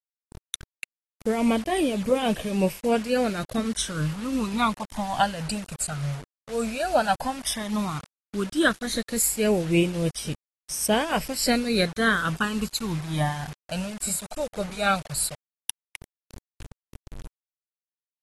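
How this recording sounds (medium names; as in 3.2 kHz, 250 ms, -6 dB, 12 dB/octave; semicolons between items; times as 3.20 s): phasing stages 12, 0.12 Hz, lowest notch 320–1400 Hz; tremolo triangle 3.5 Hz, depth 70%; a quantiser's noise floor 8-bit, dither none; AAC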